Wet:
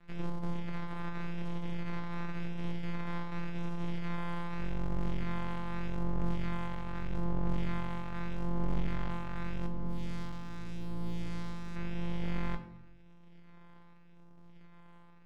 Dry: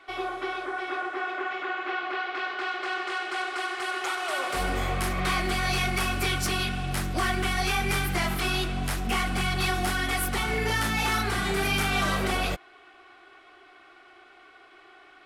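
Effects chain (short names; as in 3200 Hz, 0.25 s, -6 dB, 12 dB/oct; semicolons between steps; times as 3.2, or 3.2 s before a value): sample sorter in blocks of 256 samples; LPF 2200 Hz 12 dB/oct; limiter -23 dBFS, peak gain reduction 6 dB; 9.66–11.76 hard clip -32.5 dBFS, distortion -14 dB; rotary speaker horn 0.85 Hz; half-wave rectifier; tremolo triangle 0.84 Hz, depth 60%; reverb RT60 0.65 s, pre-delay 5 ms, DRR 5 dB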